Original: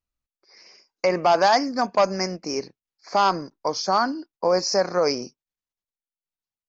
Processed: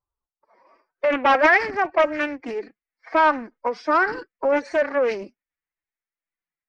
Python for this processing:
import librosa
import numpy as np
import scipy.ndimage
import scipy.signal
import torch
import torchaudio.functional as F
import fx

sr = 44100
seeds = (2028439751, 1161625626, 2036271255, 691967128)

y = fx.filter_sweep_lowpass(x, sr, from_hz=1000.0, to_hz=2000.0, start_s=0.65, end_s=1.17, q=3.9)
y = fx.pitch_keep_formants(y, sr, semitones=8.0)
y = fx.doppler_dist(y, sr, depth_ms=0.3)